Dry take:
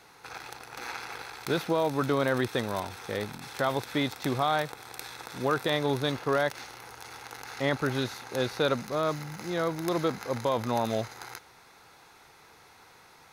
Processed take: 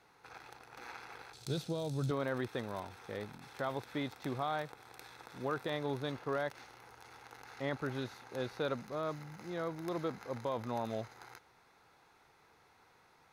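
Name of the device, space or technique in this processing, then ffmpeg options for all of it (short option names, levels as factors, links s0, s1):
behind a face mask: -filter_complex "[0:a]highshelf=f=3300:g=-7.5,asettb=1/sr,asplit=3[s0][s1][s2];[s0]atrim=end=1.334[s3];[s1]atrim=start=1.33:end=2.11,asetpts=PTS-STARTPTS,afade=t=in:d=0.004:c=qsin,afade=t=out:st=0.776:d=0.004:c=qsin,equalizer=f=125:t=o:w=1:g=11,equalizer=f=250:t=o:w=1:g=-3,equalizer=f=1000:t=o:w=1:g=-9,equalizer=f=2000:t=o:w=1:g=-10,equalizer=f=4000:t=o:w=1:g=7,equalizer=f=8000:t=o:w=1:g=11[s4];[s2]atrim=start=2.106[s5];[s3][s4]acrossfade=d=0.004:c1=hsin:c2=qsin[s6];[s6][s5]acrossfade=d=0.004:c1=qsin:c2=hsin,volume=0.355"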